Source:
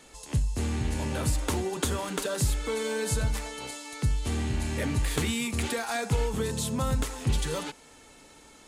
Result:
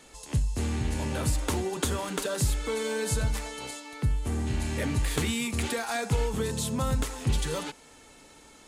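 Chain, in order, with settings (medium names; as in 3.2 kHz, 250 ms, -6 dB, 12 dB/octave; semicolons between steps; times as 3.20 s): 3.79–4.46 s: peaking EQ 11 kHz -> 2.8 kHz -10 dB 1.6 oct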